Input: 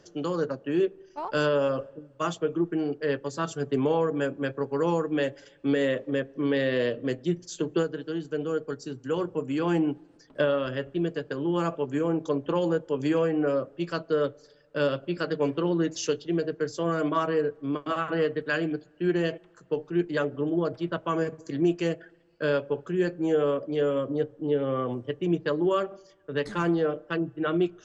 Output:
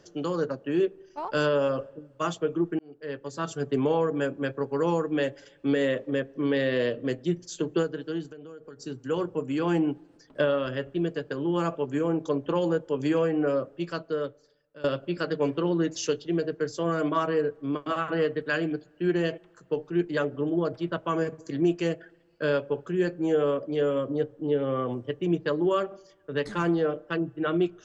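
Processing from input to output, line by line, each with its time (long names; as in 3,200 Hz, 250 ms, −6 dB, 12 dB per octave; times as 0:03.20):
0:02.79–0:03.56: fade in
0:08.29–0:08.82: downward compressor 12 to 1, threshold −40 dBFS
0:13.67–0:14.84: fade out, to −21 dB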